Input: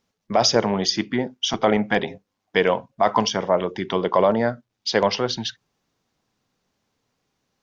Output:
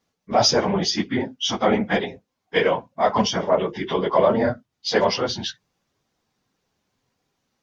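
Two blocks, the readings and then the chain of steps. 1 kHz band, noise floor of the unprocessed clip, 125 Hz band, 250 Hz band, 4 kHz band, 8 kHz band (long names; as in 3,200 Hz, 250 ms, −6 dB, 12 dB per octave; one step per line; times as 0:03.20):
0.0 dB, −79 dBFS, +0.5 dB, 0.0 dB, 0.0 dB, can't be measured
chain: random phases in long frames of 50 ms
harmonic generator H 2 −31 dB, 8 −44 dB, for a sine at −5 dBFS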